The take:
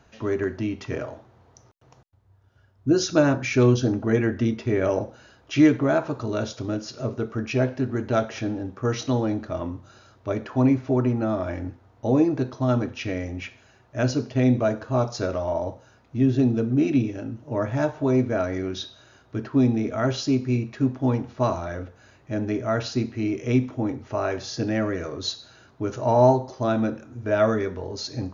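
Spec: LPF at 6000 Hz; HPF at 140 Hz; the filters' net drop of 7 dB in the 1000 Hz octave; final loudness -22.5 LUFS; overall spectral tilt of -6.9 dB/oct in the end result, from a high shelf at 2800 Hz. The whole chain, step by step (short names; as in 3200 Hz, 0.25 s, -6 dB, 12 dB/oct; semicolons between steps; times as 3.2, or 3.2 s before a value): HPF 140 Hz; LPF 6000 Hz; bell 1000 Hz -9 dB; high shelf 2800 Hz -7.5 dB; gain +4 dB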